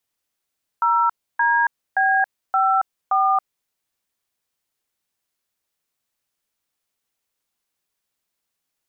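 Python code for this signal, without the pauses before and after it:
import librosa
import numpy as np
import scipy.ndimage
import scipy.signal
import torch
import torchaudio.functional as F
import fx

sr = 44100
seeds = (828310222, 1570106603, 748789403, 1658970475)

y = fx.dtmf(sr, digits='0DB54', tone_ms=276, gap_ms=297, level_db=-17.5)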